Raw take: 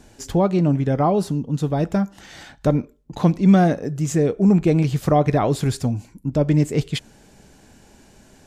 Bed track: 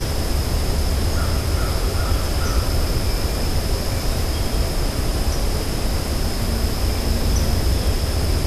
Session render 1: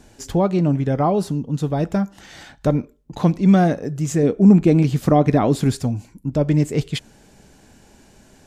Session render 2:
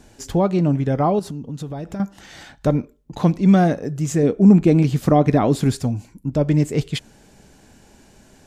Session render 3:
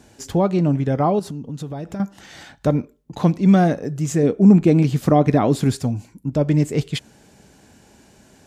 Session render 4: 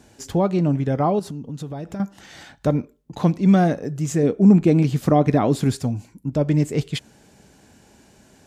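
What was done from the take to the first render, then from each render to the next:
4.23–5.75 s: peaking EQ 250 Hz +7.5 dB
1.19–2.00 s: compression, threshold -26 dBFS
high-pass 62 Hz
trim -1.5 dB

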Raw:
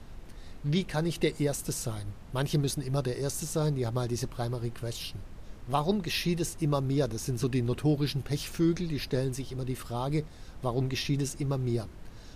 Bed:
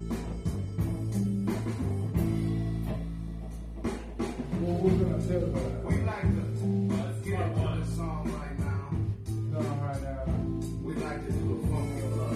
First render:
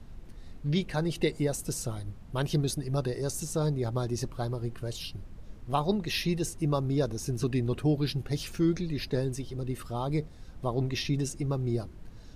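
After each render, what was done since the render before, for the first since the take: noise reduction 6 dB, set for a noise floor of -47 dBFS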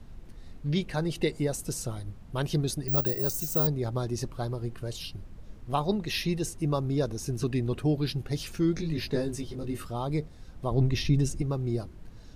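2.88–3.67 s: careless resampling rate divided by 2×, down filtered, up zero stuff; 8.75–9.87 s: doubling 19 ms -3 dB; 10.71–11.42 s: bass shelf 160 Hz +11 dB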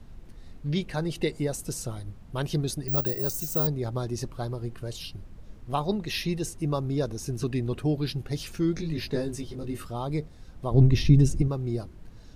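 10.74–11.48 s: bass shelf 430 Hz +7.5 dB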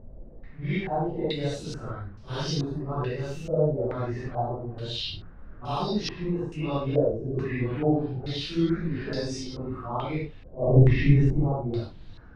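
phase randomisation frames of 200 ms; step-sequenced low-pass 2.3 Hz 570–5200 Hz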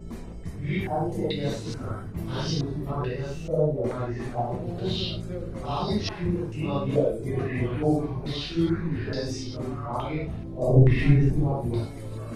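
add bed -5.5 dB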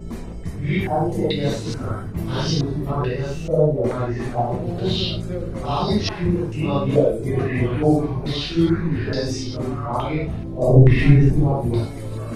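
trim +6.5 dB; peak limiter -1 dBFS, peak gain reduction 2 dB

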